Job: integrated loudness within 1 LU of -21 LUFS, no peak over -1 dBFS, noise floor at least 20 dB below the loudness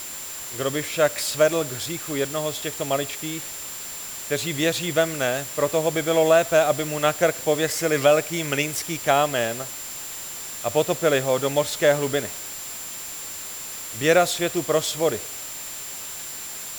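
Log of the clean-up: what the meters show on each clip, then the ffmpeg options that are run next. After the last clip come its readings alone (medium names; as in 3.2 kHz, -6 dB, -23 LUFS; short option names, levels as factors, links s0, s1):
steady tone 7.3 kHz; tone level -36 dBFS; noise floor -35 dBFS; noise floor target -44 dBFS; loudness -23.5 LUFS; peak level -4.5 dBFS; loudness target -21.0 LUFS
-> -af "bandreject=f=7300:w=30"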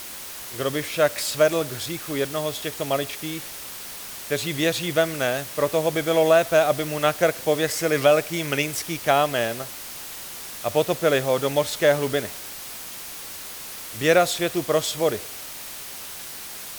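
steady tone not found; noise floor -37 dBFS; noise floor target -44 dBFS
-> -af "afftdn=nr=7:nf=-37"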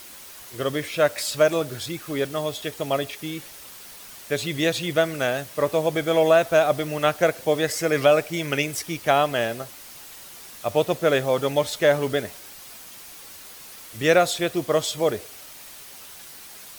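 noise floor -43 dBFS; loudness -23.0 LUFS; peak level -4.5 dBFS; loudness target -21.0 LUFS
-> -af "volume=1.26"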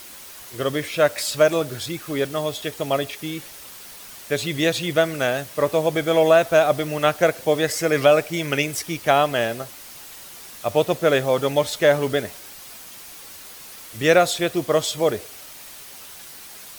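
loudness -21.0 LUFS; peak level -2.5 dBFS; noise floor -41 dBFS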